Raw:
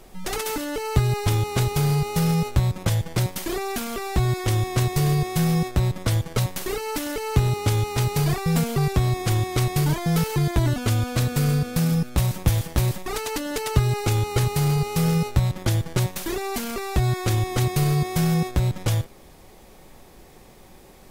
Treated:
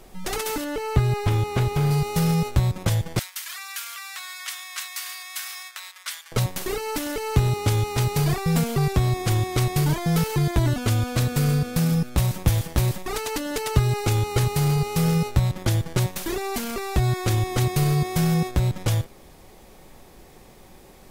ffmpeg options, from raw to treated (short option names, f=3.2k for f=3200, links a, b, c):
-filter_complex "[0:a]asettb=1/sr,asplit=3[a][b][c];[a]atrim=end=0.644[d];[b]atrim=start=0.64:end=1.91,asetpts=PTS-STARTPTS,afade=t=in:d=0.004:c=qsin,afade=t=out:st=1.266:d=0.004:c=qsin,acrossover=split=3200[e][f];[f]acompressor=threshold=-40dB:ratio=4:attack=1:release=60[g];[e][g]amix=inputs=2:normalize=0[h];[c]atrim=start=1.906[i];[d][h]acrossfade=d=0.004:c1=hsin:c2=qsin[j];[j][i]acrossfade=d=0.004:c1=qsin:c2=hsin,asettb=1/sr,asplit=3[k][l][m];[k]atrim=end=3.194[n];[l]atrim=start=3.19:end=6.32,asetpts=PTS-STARTPTS,afade=t=in:d=0.004:c=qsin,afade=t=out:st=3.126:d=0.004:c=qsin,highpass=f=1.3k:w=0.5412,highpass=f=1.3k:w=1.3066[o];[m]atrim=start=6.316[p];[n][o]acrossfade=d=0.004:c1=hsin:c2=qsin[q];[q][p]acrossfade=d=0.004:c1=qsin:c2=hsin"